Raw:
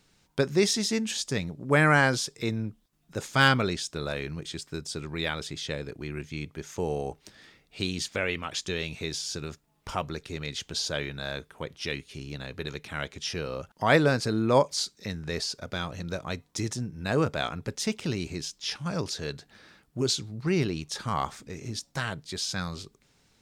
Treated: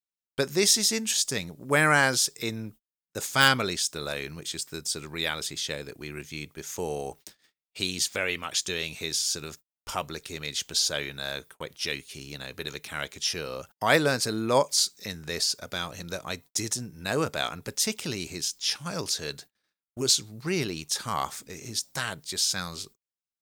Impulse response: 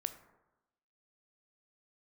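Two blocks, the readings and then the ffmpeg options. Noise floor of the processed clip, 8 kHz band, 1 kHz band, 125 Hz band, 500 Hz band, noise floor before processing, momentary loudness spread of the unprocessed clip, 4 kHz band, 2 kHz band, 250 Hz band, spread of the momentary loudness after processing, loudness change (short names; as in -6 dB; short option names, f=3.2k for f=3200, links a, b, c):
under -85 dBFS, +8.0 dB, 0.0 dB, -5.5 dB, -1.5 dB, -67 dBFS, 14 LU, +4.5 dB, +1.0 dB, -3.5 dB, 16 LU, +2.0 dB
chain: -af "aemphasis=mode=production:type=bsi,agate=range=-40dB:threshold=-47dB:ratio=16:detection=peak,lowshelf=f=79:g=10.5"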